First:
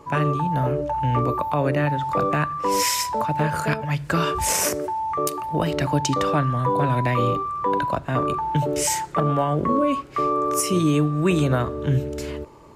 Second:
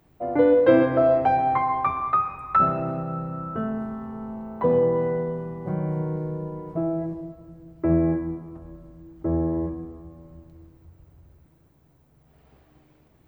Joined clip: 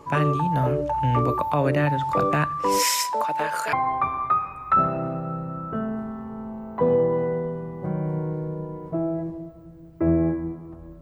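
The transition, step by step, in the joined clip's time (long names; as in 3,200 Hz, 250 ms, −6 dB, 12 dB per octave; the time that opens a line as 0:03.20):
first
0:02.78–0:03.73: high-pass filter 270 Hz → 650 Hz
0:03.73: continue with second from 0:01.56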